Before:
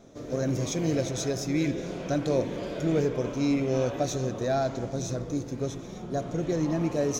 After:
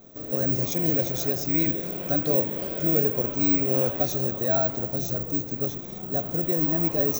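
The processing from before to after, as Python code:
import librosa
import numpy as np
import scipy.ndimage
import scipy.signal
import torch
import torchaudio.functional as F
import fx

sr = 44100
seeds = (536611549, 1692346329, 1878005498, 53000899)

y = (np.kron(scipy.signal.resample_poly(x, 1, 2), np.eye(2)[0]) * 2)[:len(x)]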